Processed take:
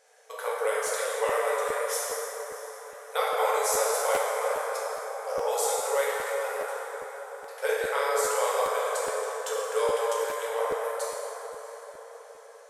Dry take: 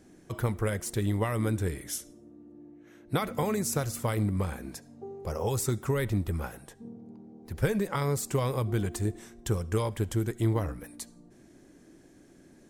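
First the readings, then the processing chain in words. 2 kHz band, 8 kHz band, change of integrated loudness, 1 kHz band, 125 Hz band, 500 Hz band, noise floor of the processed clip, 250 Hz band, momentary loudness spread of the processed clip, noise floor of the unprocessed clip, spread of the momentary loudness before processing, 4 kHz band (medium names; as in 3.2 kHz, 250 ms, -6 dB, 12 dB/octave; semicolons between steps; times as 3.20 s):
+8.0 dB, +6.0 dB, +2.5 dB, +9.5 dB, under -30 dB, +7.0 dB, -48 dBFS, under -20 dB, 15 LU, -57 dBFS, 15 LU, +6.0 dB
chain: brick-wall FIR band-pass 430–13000 Hz; on a send: echo that smears into a reverb 660 ms, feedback 44%, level -15.5 dB; on the sum: plate-style reverb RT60 4.5 s, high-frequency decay 0.4×, DRR -7.5 dB; crackling interface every 0.41 s, samples 512, repeat, from 0.86 s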